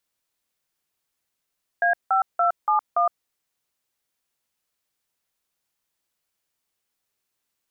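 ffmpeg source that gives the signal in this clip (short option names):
-f lavfi -i "aevalsrc='0.106*clip(min(mod(t,0.286),0.114-mod(t,0.286))/0.002,0,1)*(eq(floor(t/0.286),0)*(sin(2*PI*697*mod(t,0.286))+sin(2*PI*1633*mod(t,0.286)))+eq(floor(t/0.286),1)*(sin(2*PI*770*mod(t,0.286))+sin(2*PI*1336*mod(t,0.286)))+eq(floor(t/0.286),2)*(sin(2*PI*697*mod(t,0.286))+sin(2*PI*1336*mod(t,0.286)))+eq(floor(t/0.286),3)*(sin(2*PI*852*mod(t,0.286))+sin(2*PI*1209*mod(t,0.286)))+eq(floor(t/0.286),4)*(sin(2*PI*697*mod(t,0.286))+sin(2*PI*1209*mod(t,0.286))))':d=1.43:s=44100"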